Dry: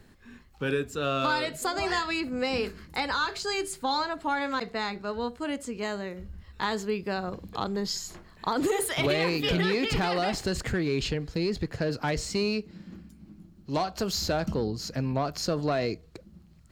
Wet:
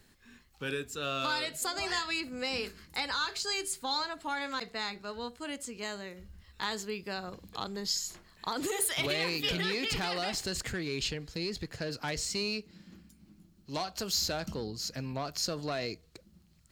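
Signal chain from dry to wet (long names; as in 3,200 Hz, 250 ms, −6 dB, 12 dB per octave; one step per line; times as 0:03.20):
high-shelf EQ 2,100 Hz +11.5 dB
level −9 dB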